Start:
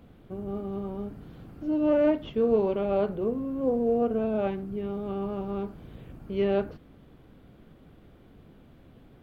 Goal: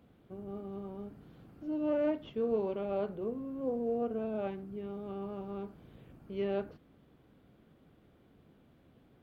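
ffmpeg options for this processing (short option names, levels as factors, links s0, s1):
-af "highpass=f=90:p=1,volume=0.398"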